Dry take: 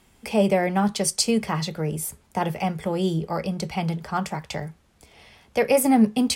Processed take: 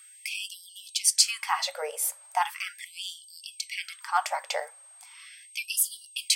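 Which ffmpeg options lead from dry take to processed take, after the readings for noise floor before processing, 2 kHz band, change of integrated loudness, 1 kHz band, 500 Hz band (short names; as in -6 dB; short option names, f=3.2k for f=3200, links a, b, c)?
-59 dBFS, -1.0 dB, -4.5 dB, -3.5 dB, -16.0 dB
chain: -af "aeval=exprs='val(0)+0.00251*sin(2*PI*8400*n/s)':c=same,afftfilt=real='re*gte(b*sr/1024,450*pow(2900/450,0.5+0.5*sin(2*PI*0.38*pts/sr)))':imag='im*gte(b*sr/1024,450*pow(2900/450,0.5+0.5*sin(2*PI*0.38*pts/sr)))':win_size=1024:overlap=0.75,volume=2.5dB"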